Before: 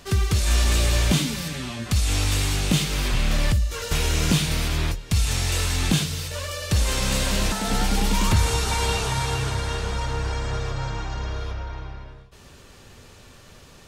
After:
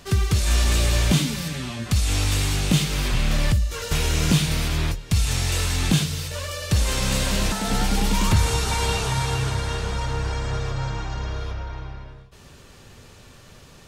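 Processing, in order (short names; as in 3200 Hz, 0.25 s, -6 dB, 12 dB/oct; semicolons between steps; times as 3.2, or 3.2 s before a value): bell 140 Hz +3 dB 0.82 oct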